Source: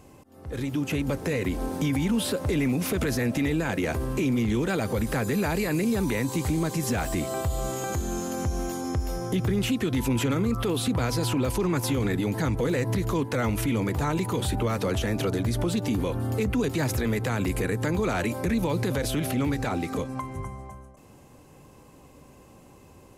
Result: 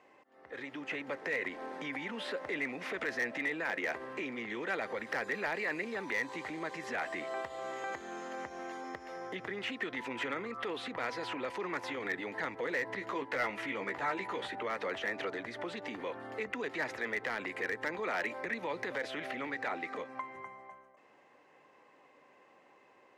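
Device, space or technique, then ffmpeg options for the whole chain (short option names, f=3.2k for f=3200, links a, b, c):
megaphone: -filter_complex "[0:a]highpass=520,lowpass=3k,equalizer=f=1.9k:t=o:w=0.36:g=10.5,asoftclip=type=hard:threshold=-21dB,asettb=1/sr,asplit=3[a][b][c];[a]atrim=end=12.964[d];[b]atrim=start=12.96:end=14.48,asetpts=PTS-STARTPTS,afade=t=in:d=0.004:c=qsin,afade=t=out:st=1.516:d=0.004:c=qsin,asplit=2[e][f];[f]adelay=15,volume=-6dB[g];[e][g]amix=inputs=2:normalize=0,atrim=end_sample=67032[h];[c]atrim=start=14.476[i];[d][h]acrossfade=d=0.004:c1=hsin:c2=qsin[j];[j][i]acrossfade=d=0.004:c1=qsin:c2=hsin,volume=-5.5dB"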